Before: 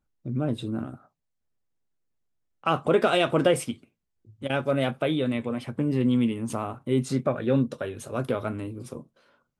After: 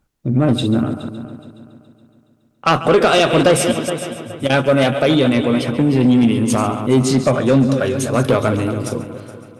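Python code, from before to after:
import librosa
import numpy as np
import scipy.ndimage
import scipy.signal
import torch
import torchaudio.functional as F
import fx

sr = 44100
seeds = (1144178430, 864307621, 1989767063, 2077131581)

p1 = fx.reverse_delay(x, sr, ms=156, wet_db=-10.5)
p2 = fx.echo_heads(p1, sr, ms=140, heads='first and third', feedback_pct=47, wet_db=-16)
p3 = fx.rider(p2, sr, range_db=3, speed_s=0.5)
p4 = p2 + (p3 * 10.0 ** (3.0 / 20.0))
p5 = fx.cheby_harmonics(p4, sr, harmonics=(5,), levels_db=(-15,), full_scale_db=-1.0)
p6 = fx.dynamic_eq(p5, sr, hz=5400.0, q=0.97, threshold_db=-39.0, ratio=4.0, max_db=5)
y = p6 * 10.0 ** (-1.0 / 20.0)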